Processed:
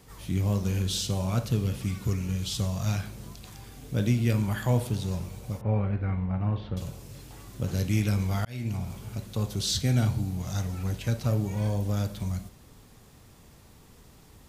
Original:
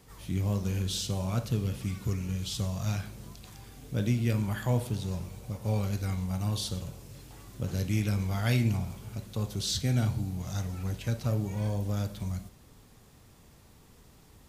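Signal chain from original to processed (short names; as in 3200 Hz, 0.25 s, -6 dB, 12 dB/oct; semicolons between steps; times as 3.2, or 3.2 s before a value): 5.61–6.77 LPF 2200 Hz 24 dB/oct; 8.45–8.97 fade in; gain +3 dB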